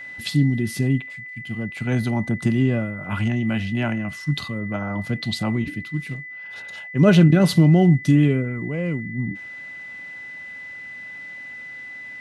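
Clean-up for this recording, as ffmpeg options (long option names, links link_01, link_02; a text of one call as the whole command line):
ffmpeg -i in.wav -af "bandreject=frequency=2000:width=30" out.wav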